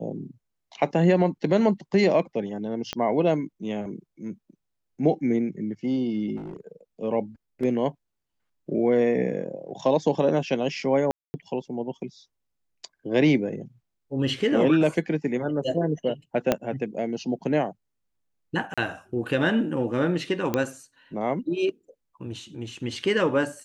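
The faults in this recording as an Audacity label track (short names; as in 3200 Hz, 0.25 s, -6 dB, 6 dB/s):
2.930000	2.930000	pop -14 dBFS
6.360000	6.720000	clipped -32.5 dBFS
11.110000	11.340000	gap 0.23 s
16.520000	16.520000	pop -7 dBFS
18.740000	18.780000	gap 36 ms
20.540000	20.540000	pop -10 dBFS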